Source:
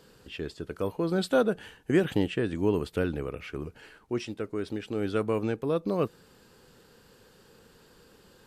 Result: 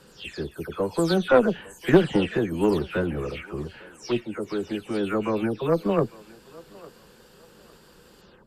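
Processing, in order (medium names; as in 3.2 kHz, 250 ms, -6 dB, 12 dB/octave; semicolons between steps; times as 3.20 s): delay that grows with frequency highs early, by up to 247 ms; Chebyshev shaper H 2 -15 dB, 3 -18 dB, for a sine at -12 dBFS; thinning echo 855 ms, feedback 34%, high-pass 400 Hz, level -20 dB; trim +9 dB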